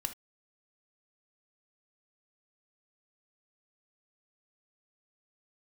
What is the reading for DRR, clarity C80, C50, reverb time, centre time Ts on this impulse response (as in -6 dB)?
6.5 dB, 29.0 dB, 12.5 dB, no single decay rate, 9 ms